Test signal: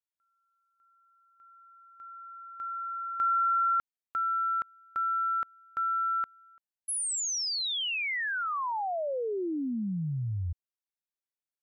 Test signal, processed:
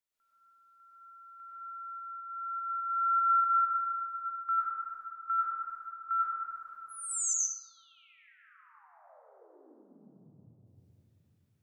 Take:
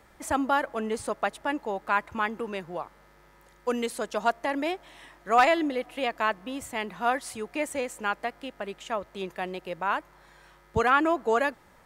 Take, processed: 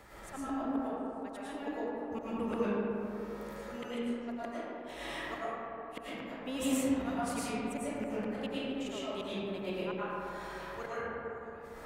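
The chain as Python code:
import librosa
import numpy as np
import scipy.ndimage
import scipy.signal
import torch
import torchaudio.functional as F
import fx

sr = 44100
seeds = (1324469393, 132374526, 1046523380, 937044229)

y = fx.auto_swell(x, sr, attack_ms=606.0)
y = fx.gate_flip(y, sr, shuts_db=-31.0, range_db=-40)
y = fx.rev_freeverb(y, sr, rt60_s=3.5, hf_ratio=0.3, predelay_ms=70, drr_db=-10.0)
y = y * 10.0 ** (1.5 / 20.0)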